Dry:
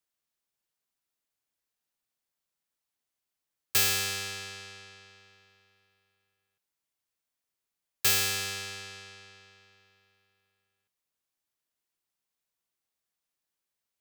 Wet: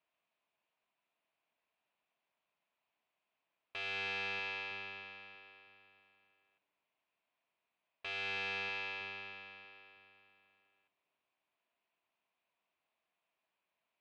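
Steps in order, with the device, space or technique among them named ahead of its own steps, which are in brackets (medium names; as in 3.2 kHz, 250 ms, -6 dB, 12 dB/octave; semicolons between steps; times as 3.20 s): analogue delay pedal into a guitar amplifier (bucket-brigade echo 319 ms, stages 1024, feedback 46%, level -11 dB; valve stage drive 41 dB, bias 0.4; cabinet simulation 97–3500 Hz, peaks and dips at 110 Hz -9 dB, 660 Hz +10 dB, 1 kHz +8 dB, 2.5 kHz +8 dB); trim +3.5 dB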